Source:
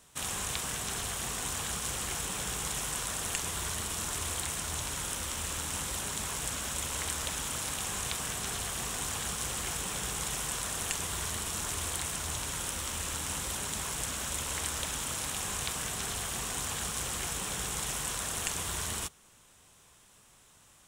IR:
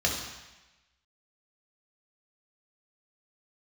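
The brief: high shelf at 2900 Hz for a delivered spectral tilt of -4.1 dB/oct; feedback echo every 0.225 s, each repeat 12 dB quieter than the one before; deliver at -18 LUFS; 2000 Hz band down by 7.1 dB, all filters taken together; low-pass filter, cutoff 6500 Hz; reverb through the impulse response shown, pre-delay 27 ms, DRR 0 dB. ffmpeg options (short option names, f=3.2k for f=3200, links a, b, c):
-filter_complex "[0:a]lowpass=6.5k,equalizer=f=2k:t=o:g=-6,highshelf=f=2.9k:g=-8.5,aecho=1:1:225|450|675:0.251|0.0628|0.0157,asplit=2[a][b];[1:a]atrim=start_sample=2205,adelay=27[c];[b][c]afir=irnorm=-1:irlink=0,volume=-11dB[d];[a][d]amix=inputs=2:normalize=0,volume=18dB"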